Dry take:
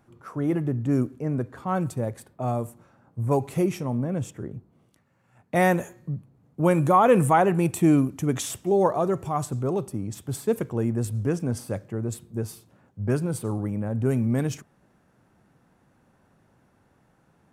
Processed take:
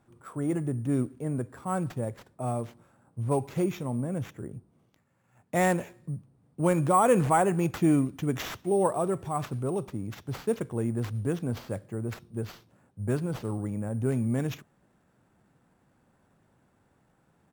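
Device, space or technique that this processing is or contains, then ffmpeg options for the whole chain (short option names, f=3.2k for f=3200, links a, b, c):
crushed at another speed: -af "asetrate=35280,aresample=44100,acrusher=samples=6:mix=1:aa=0.000001,asetrate=55125,aresample=44100,volume=-4dB"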